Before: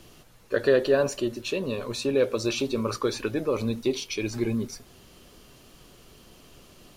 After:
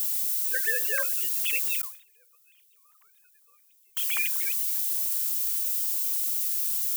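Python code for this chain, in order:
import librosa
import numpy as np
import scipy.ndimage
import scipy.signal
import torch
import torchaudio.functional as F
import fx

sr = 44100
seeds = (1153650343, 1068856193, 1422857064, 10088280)

y = fx.sine_speech(x, sr)
y = fx.dmg_noise_colour(y, sr, seeds[0], colour='violet', level_db=-40.0)
y = scipy.signal.sosfilt(scipy.signal.butter(4, 990.0, 'highpass', fs=sr, output='sos'), y)
y = fx.high_shelf(y, sr, hz=2500.0, db=9.0)
y = fx.gate_flip(y, sr, shuts_db=-23.0, range_db=-34, at=(1.81, 3.97))
y = fx.sustainer(y, sr, db_per_s=130.0)
y = F.gain(torch.from_numpy(y), 3.5).numpy()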